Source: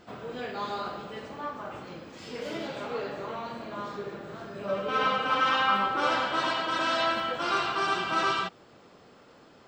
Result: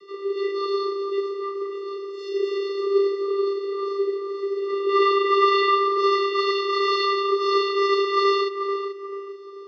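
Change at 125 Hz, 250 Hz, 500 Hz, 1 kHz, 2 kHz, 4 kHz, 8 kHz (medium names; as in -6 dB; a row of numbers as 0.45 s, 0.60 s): under -25 dB, +7.0 dB, +13.5 dB, +4.5 dB, -0.5 dB, +3.5 dB, no reading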